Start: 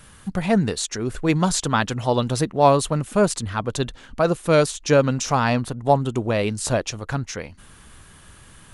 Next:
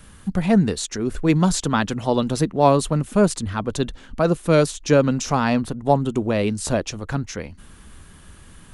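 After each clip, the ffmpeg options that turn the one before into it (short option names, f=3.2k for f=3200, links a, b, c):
-filter_complex "[0:a]equalizer=f=120:t=o:w=0.35:g=-9,acrossover=split=360|3500[a][b][c];[a]acontrast=59[d];[d][b][c]amix=inputs=3:normalize=0,volume=-1.5dB"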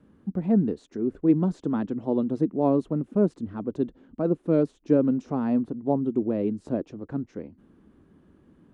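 -af "bandpass=f=300:t=q:w=1.8:csg=0"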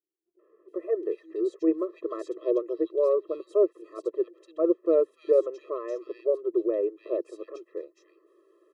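-filter_complex "[0:a]acrossover=split=150|2300[a][b][c];[b]adelay=390[d];[c]adelay=680[e];[a][d][e]amix=inputs=3:normalize=0,afftfilt=real='re*eq(mod(floor(b*sr/1024/340),2),1)':imag='im*eq(mod(floor(b*sr/1024/340),2),1)':win_size=1024:overlap=0.75,volume=3.5dB"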